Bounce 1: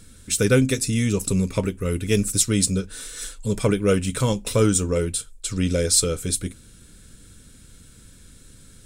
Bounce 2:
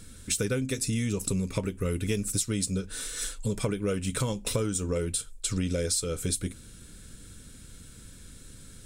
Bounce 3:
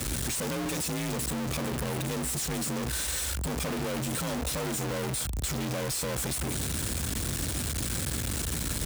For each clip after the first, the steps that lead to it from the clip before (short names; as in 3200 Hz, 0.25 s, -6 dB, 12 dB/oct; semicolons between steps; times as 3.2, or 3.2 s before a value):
compressor 10:1, threshold -25 dBFS, peak gain reduction 13.5 dB
infinite clipping; frequency shift +41 Hz